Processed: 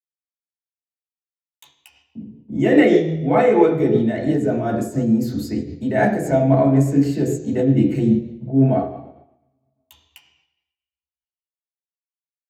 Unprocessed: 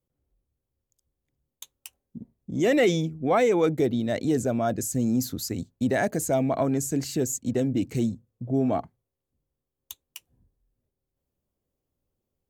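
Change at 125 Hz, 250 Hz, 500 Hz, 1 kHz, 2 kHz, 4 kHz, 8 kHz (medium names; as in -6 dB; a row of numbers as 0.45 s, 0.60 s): +9.5 dB, +8.5 dB, +6.5 dB, +6.5 dB, +5.5 dB, no reading, -8.0 dB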